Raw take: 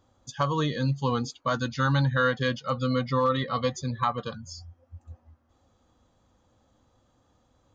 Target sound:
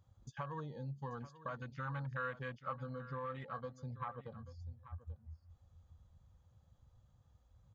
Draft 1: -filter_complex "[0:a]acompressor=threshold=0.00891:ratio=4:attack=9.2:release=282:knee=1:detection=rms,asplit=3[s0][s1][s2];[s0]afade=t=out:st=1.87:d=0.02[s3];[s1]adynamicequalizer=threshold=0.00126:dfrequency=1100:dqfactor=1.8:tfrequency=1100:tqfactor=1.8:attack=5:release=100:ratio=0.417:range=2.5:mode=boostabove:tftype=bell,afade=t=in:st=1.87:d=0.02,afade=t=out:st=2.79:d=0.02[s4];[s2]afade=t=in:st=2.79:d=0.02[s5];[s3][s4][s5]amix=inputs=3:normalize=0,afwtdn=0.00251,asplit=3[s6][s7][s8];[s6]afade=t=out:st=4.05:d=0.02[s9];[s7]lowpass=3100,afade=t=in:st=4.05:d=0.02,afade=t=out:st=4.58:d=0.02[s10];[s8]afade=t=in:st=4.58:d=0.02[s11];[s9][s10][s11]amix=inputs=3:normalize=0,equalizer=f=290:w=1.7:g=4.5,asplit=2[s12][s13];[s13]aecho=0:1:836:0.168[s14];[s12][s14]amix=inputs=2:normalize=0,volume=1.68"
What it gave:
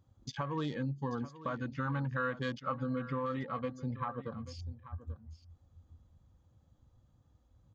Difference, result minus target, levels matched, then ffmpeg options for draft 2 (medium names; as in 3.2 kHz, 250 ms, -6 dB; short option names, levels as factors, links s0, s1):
250 Hz band +5.5 dB; compression: peak gain reduction -5 dB
-filter_complex "[0:a]acompressor=threshold=0.00422:ratio=4:attack=9.2:release=282:knee=1:detection=rms,asplit=3[s0][s1][s2];[s0]afade=t=out:st=1.87:d=0.02[s3];[s1]adynamicequalizer=threshold=0.00126:dfrequency=1100:dqfactor=1.8:tfrequency=1100:tqfactor=1.8:attack=5:release=100:ratio=0.417:range=2.5:mode=boostabove:tftype=bell,afade=t=in:st=1.87:d=0.02,afade=t=out:st=2.79:d=0.02[s4];[s2]afade=t=in:st=2.79:d=0.02[s5];[s3][s4][s5]amix=inputs=3:normalize=0,afwtdn=0.00251,asplit=3[s6][s7][s8];[s6]afade=t=out:st=4.05:d=0.02[s9];[s7]lowpass=3100,afade=t=in:st=4.05:d=0.02,afade=t=out:st=4.58:d=0.02[s10];[s8]afade=t=in:st=4.58:d=0.02[s11];[s9][s10][s11]amix=inputs=3:normalize=0,equalizer=f=290:w=1.7:g=-7,asplit=2[s12][s13];[s13]aecho=0:1:836:0.168[s14];[s12][s14]amix=inputs=2:normalize=0,volume=1.68"